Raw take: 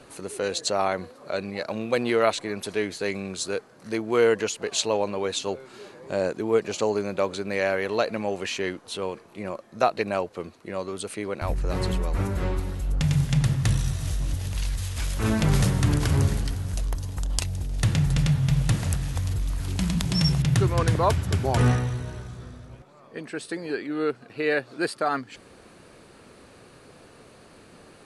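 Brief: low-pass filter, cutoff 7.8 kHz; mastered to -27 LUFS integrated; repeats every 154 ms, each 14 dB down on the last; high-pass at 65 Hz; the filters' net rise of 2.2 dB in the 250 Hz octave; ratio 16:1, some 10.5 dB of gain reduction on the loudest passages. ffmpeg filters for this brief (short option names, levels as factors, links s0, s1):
-af "highpass=65,lowpass=7800,equalizer=f=250:t=o:g=3.5,acompressor=threshold=0.0501:ratio=16,aecho=1:1:154|308:0.2|0.0399,volume=1.78"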